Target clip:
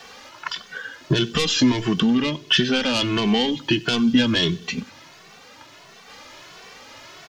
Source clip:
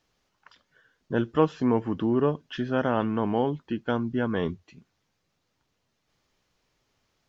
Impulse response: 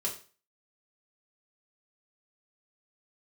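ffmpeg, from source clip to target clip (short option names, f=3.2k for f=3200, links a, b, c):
-filter_complex "[0:a]asplit=2[a][b];[b]highpass=f=720:p=1,volume=21dB,asoftclip=type=tanh:threshold=-6.5dB[c];[a][c]amix=inputs=2:normalize=0,lowpass=f=4.1k:p=1,volume=-6dB,acrossover=split=2400[d][e];[d]acompressor=threshold=-30dB:ratio=6[f];[f][e]amix=inputs=2:normalize=0,asettb=1/sr,asplit=3[g][h][i];[g]atrim=end=2.174[j];[h]atrim=start=2.17:end=2.94,asetpts=PTS-STARTPTS,afade=t=in:d=0.004:c=qsin,afade=t=out:st=0.766:d=0.004:c=qsin,bass=f=250:g=-3,treble=f=4k:g=-4[k];[i]atrim=start=2.936[l];[j][k]acrossfade=d=0.004:c1=hsin:c2=qsin[m];[m][l]acrossfade=d=0.004:c1=qsin:c2=hsin,acrossover=split=270|3000[n][o][p];[o]acompressor=threshold=-53dB:ratio=2.5[q];[n][q][p]amix=inputs=3:normalize=0,asplit=2[r][s];[s]aecho=0:1:95|190|285|380:0.0668|0.0381|0.0217|0.0124[t];[r][t]amix=inputs=2:normalize=0,alimiter=level_in=24.5dB:limit=-1dB:release=50:level=0:latency=1,asplit=2[u][v];[v]adelay=2.2,afreqshift=1.5[w];[u][w]amix=inputs=2:normalize=1,volume=-3dB"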